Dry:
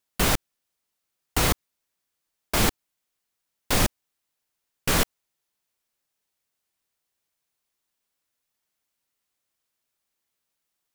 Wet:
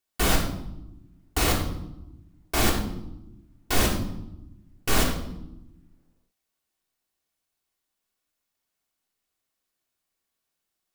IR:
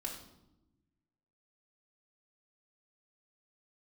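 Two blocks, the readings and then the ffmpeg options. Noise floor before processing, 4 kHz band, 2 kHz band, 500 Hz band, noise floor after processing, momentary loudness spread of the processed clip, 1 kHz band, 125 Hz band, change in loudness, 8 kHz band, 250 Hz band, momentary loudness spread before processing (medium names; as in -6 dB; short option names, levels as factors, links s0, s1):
-81 dBFS, -0.5 dB, -0.5 dB, +0.5 dB, -82 dBFS, 18 LU, 0.0 dB, +1.0 dB, -1.5 dB, -1.5 dB, +2.0 dB, 7 LU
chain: -filter_complex "[1:a]atrim=start_sample=2205[s0];[0:a][s0]afir=irnorm=-1:irlink=0"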